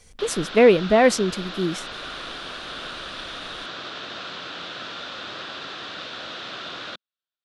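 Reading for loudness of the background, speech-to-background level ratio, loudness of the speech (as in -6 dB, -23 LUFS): -33.5 LUFS, 14.0 dB, -19.5 LUFS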